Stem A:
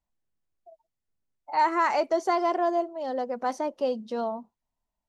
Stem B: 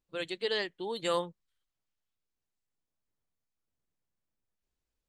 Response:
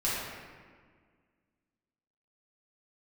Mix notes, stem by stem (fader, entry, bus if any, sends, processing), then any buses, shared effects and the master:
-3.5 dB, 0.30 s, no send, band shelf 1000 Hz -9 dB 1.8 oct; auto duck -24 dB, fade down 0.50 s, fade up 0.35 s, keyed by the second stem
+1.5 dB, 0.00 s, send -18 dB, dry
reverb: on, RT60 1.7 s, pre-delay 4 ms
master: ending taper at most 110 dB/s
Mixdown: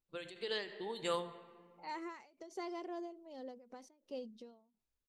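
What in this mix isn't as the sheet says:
stem A -3.5 dB -> -13.0 dB; stem B +1.5 dB -> -6.5 dB

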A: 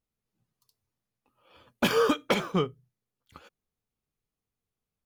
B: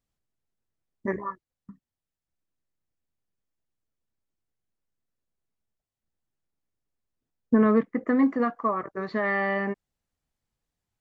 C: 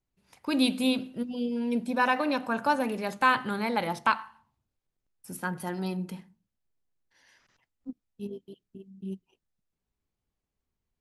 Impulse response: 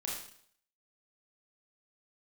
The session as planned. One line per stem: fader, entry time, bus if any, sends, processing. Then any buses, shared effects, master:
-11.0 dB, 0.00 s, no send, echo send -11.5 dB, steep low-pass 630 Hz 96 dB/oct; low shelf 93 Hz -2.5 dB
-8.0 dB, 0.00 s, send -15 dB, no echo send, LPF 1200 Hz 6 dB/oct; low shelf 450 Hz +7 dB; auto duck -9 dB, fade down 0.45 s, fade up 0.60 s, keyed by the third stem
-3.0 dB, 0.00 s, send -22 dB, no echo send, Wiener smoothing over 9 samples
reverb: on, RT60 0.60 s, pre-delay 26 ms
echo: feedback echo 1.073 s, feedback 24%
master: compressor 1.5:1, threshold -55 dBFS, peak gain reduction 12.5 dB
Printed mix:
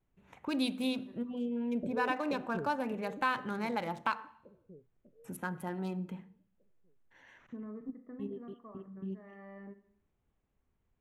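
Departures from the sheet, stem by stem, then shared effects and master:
stem A -11.0 dB -> 0.0 dB; stem B -8.0 dB -> -15.5 dB; stem C -3.0 dB -> +6.0 dB

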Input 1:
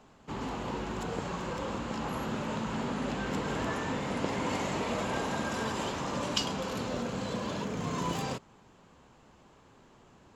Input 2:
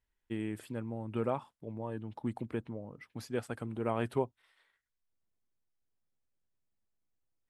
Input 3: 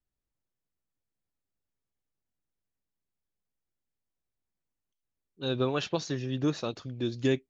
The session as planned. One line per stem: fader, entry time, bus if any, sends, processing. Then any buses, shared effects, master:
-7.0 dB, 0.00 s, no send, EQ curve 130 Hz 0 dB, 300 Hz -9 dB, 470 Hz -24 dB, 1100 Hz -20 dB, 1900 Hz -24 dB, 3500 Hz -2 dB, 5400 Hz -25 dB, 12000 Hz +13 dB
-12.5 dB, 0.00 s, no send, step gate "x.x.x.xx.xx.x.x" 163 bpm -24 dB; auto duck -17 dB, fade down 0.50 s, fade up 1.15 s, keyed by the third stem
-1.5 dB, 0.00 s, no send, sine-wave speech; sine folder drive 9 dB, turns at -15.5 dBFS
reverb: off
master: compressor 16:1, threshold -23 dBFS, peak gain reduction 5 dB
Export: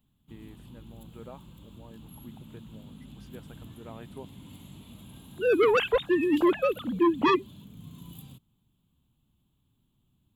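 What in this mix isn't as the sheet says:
stem 2: missing step gate "x.x.x.xx.xx.x.x" 163 bpm -24 dB; master: missing compressor 16:1, threshold -23 dBFS, peak gain reduction 5 dB

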